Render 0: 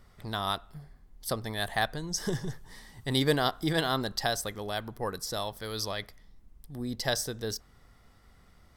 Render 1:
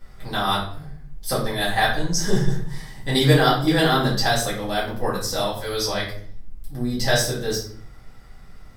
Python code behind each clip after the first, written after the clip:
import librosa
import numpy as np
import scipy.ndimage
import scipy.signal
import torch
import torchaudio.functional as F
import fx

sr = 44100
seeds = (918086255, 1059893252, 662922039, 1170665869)

y = fx.room_shoebox(x, sr, seeds[0], volume_m3=63.0, walls='mixed', distance_m=2.0)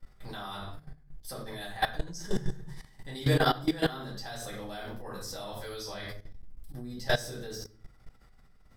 y = fx.level_steps(x, sr, step_db=17)
y = y * librosa.db_to_amplitude(-5.5)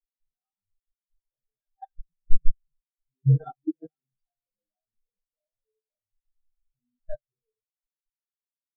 y = fx.spectral_expand(x, sr, expansion=4.0)
y = y * librosa.db_to_amplitude(7.5)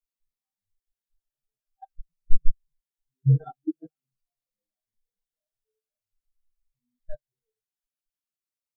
y = fx.notch_cascade(x, sr, direction='falling', hz=0.46)